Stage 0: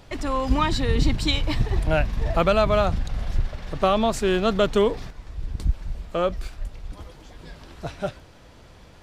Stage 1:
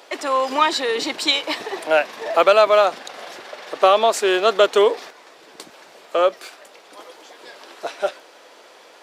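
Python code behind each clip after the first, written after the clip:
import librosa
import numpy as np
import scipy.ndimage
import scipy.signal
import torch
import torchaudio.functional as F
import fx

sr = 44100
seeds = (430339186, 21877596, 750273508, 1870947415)

y = scipy.signal.sosfilt(scipy.signal.butter(4, 390.0, 'highpass', fs=sr, output='sos'), x)
y = F.gain(torch.from_numpy(y), 7.0).numpy()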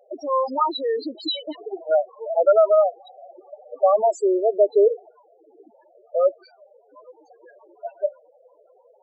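y = fx.peak_eq(x, sr, hz=2100.0, db=-6.0, octaves=1.2)
y = fx.spec_topn(y, sr, count=4)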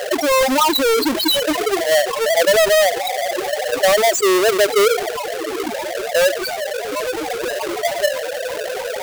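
y = fx.halfwave_hold(x, sr)
y = fx.env_flatten(y, sr, amount_pct=70)
y = F.gain(torch.from_numpy(y), -3.0).numpy()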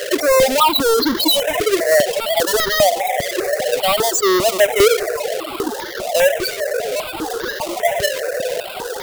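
y = fx.dmg_noise_band(x, sr, seeds[0], low_hz=400.0, high_hz=700.0, level_db=-33.0)
y = fx.phaser_held(y, sr, hz=5.0, low_hz=210.0, high_hz=2500.0)
y = F.gain(torch.from_numpy(y), 3.5).numpy()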